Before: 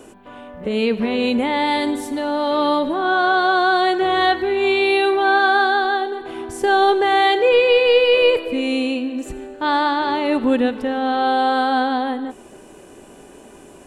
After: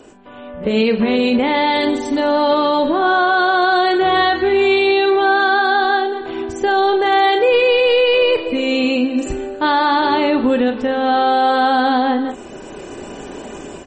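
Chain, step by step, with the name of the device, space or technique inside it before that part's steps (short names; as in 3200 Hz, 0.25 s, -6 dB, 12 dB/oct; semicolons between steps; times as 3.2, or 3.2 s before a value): 2.99–3.69 bell 690 Hz -> 2600 Hz +3 dB 0.27 oct; doubler 36 ms -10 dB; low-bitrate web radio (AGC gain up to 12 dB; limiter -6 dBFS, peak gain reduction 5 dB; MP3 32 kbps 44100 Hz)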